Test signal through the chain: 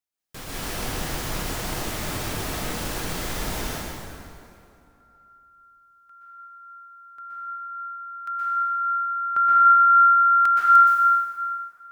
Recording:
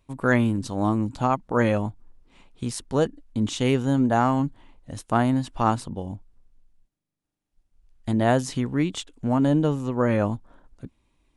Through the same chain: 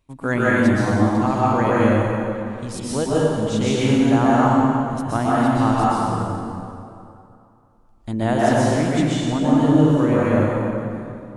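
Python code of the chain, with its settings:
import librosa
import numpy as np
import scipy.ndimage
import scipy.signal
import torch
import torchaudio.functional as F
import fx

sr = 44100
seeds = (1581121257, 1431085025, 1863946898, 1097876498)

y = fx.rev_plate(x, sr, seeds[0], rt60_s=2.6, hf_ratio=0.7, predelay_ms=110, drr_db=-7.5)
y = y * librosa.db_to_amplitude(-2.5)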